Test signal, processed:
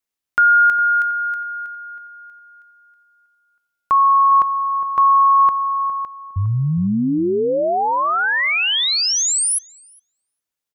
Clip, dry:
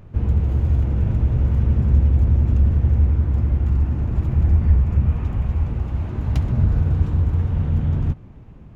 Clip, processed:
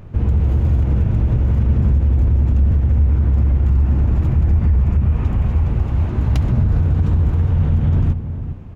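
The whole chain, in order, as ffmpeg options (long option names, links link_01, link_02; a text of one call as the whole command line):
ffmpeg -i in.wav -filter_complex "[0:a]asplit=2[link_01][link_02];[link_02]adelay=409,lowpass=frequency=1200:poles=1,volume=-11.5dB,asplit=2[link_03][link_04];[link_04]adelay=409,lowpass=frequency=1200:poles=1,volume=0.2,asplit=2[link_05][link_06];[link_06]adelay=409,lowpass=frequency=1200:poles=1,volume=0.2[link_07];[link_01][link_03][link_05][link_07]amix=inputs=4:normalize=0,alimiter=level_in=13dB:limit=-1dB:release=50:level=0:latency=1,volume=-7.5dB" out.wav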